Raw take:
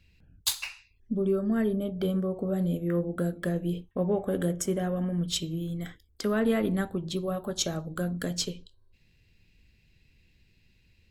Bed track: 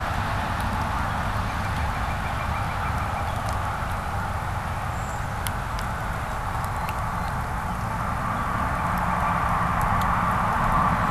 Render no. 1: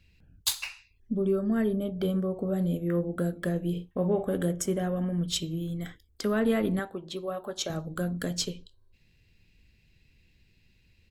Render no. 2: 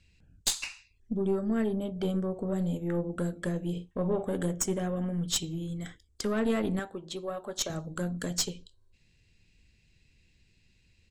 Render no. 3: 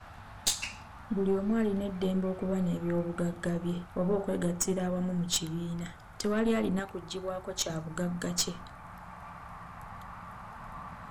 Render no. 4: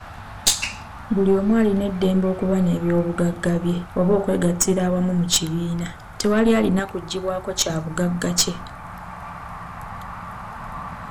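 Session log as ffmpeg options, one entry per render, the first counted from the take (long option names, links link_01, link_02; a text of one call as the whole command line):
ffmpeg -i in.wav -filter_complex "[0:a]asplit=3[link_01][link_02][link_03];[link_01]afade=type=out:start_time=3.75:duration=0.02[link_04];[link_02]asplit=2[link_05][link_06];[link_06]adelay=46,volume=-10dB[link_07];[link_05][link_07]amix=inputs=2:normalize=0,afade=type=in:start_time=3.75:duration=0.02,afade=type=out:start_time=4.36:duration=0.02[link_08];[link_03]afade=type=in:start_time=4.36:duration=0.02[link_09];[link_04][link_08][link_09]amix=inputs=3:normalize=0,asettb=1/sr,asplit=3[link_10][link_11][link_12];[link_10]atrim=end=6.794[link_13];[link_11]atrim=start=6.79:end=7.7,asetpts=PTS-STARTPTS,afade=type=in:duration=0.004:curve=qsin,afade=type=out:start_time=0.906:duration=0.004:curve=qsin,bass=frequency=250:gain=-14,treble=frequency=4000:gain=-6[link_14];[link_12]atrim=start=7.696[link_15];[link_13][link_14]acrossfade=duration=0.004:curve1=hsin:curve2=qsin[link_16];[link_16][link_15]acrossfade=duration=0.004:curve1=qsin:curve2=hsin" out.wav
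ffmpeg -i in.wav -af "lowpass=frequency=7800:width_type=q:width=2.4,aeval=exprs='(tanh(7.94*val(0)+0.5)-tanh(0.5))/7.94':channel_layout=same" out.wav
ffmpeg -i in.wav -i bed.wav -filter_complex "[1:a]volume=-22.5dB[link_01];[0:a][link_01]amix=inputs=2:normalize=0" out.wav
ffmpeg -i in.wav -af "volume=11dB" out.wav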